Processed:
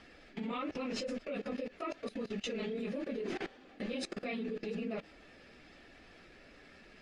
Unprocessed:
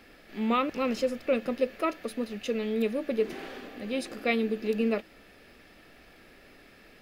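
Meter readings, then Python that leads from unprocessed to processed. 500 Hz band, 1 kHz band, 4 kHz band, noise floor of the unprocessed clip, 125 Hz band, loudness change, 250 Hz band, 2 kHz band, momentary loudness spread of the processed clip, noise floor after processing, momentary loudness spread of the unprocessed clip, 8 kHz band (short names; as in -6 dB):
-10.5 dB, -11.5 dB, -5.0 dB, -55 dBFS, n/a, -9.5 dB, -8.5 dB, -9.0 dB, 19 LU, -58 dBFS, 7 LU, -4.0 dB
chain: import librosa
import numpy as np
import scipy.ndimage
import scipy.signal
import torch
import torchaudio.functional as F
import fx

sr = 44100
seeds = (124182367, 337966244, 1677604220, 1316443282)

y = fx.phase_scramble(x, sr, seeds[0], window_ms=50)
y = scipy.signal.sosfilt(scipy.signal.butter(4, 8000.0, 'lowpass', fs=sr, output='sos'), y)
y = fx.level_steps(y, sr, step_db=20)
y = y * librosa.db_to_amplitude(2.5)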